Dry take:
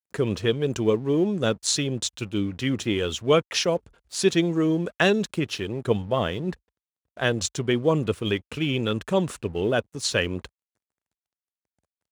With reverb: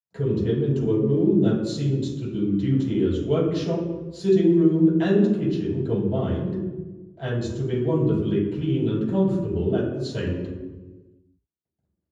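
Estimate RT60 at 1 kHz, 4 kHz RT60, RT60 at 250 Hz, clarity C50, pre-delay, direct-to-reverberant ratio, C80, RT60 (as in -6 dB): 1.1 s, 0.75 s, 1.6 s, 1.0 dB, 3 ms, -11.0 dB, 3.0 dB, 1.3 s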